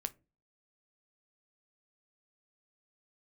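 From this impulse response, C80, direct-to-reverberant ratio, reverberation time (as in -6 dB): 30.0 dB, 10.5 dB, not exponential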